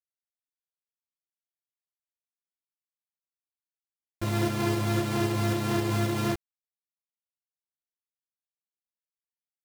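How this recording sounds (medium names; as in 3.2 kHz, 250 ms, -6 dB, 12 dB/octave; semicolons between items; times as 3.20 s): a buzz of ramps at a fixed pitch in blocks of 128 samples; tremolo saw up 3.8 Hz, depth 40%; a quantiser's noise floor 6-bit, dither none; a shimmering, thickened sound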